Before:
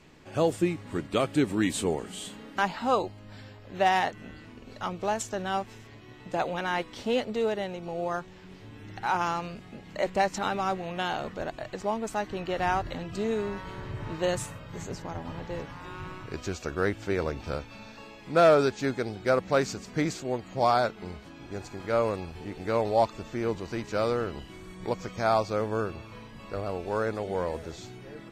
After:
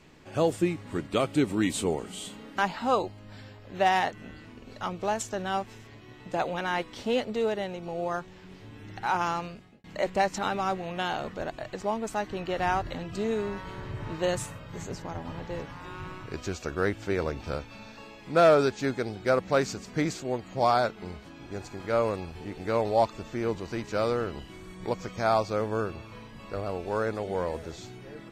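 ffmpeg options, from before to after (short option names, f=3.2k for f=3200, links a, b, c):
-filter_complex "[0:a]asettb=1/sr,asplit=3[a][b][c];[a]atrim=end=1.174[d];[b]atrim=start=1.17:end=2.44,asetpts=PTS-STARTPTS,afade=t=in:d=0.004:c=qsin,afade=t=out:st=1.266:d=0.004:c=qsin,bandreject=f=1.7k:w=11[e];[c]atrim=start=2.436[f];[d][e]acrossfade=d=0.004:c1=hsin:c2=qsin[g];[g][f]acrossfade=d=0.004:c1=qsin:c2=hsin,asplit=2[h][i];[h]atrim=end=9.84,asetpts=PTS-STARTPTS,afade=t=out:st=9.41:d=0.43[j];[i]atrim=start=9.84,asetpts=PTS-STARTPTS,afade=t=in:d=0.004:c=hsin[k];[j][k]concat=n=2:v=0:a=1"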